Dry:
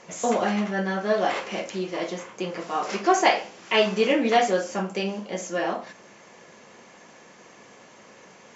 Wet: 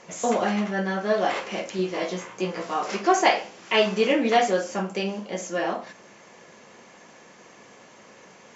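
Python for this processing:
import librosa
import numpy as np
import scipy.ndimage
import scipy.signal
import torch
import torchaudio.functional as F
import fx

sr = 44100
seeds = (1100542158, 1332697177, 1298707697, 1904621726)

y = fx.doubler(x, sr, ms=16.0, db=-3.0, at=(1.77, 2.74))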